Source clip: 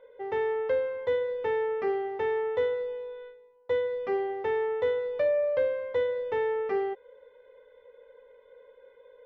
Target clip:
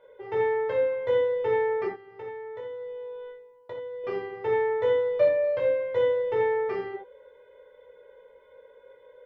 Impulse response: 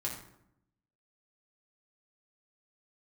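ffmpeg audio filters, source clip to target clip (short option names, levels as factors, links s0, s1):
-filter_complex "[0:a]asettb=1/sr,asplit=3[s0][s1][s2];[s0]atrim=end=1.864[s3];[s1]atrim=start=1.86:end=4.04,asetpts=PTS-STARTPTS,afade=t=in:d=0.004:c=qsin,afade=t=out:st=2.176:d=0.004:c=qsin,acompressor=threshold=0.01:ratio=6[s4];[s2]atrim=start=4.036[s5];[s3][s4]acrossfade=d=0.004:c1=hsin:c2=qsin[s6];[s6][s5]acrossfade=d=0.004:c1=qsin:c2=hsin[s7];[1:a]atrim=start_sample=2205,atrim=end_sample=4410[s8];[s7][s8]afir=irnorm=-1:irlink=0,volume=1.19"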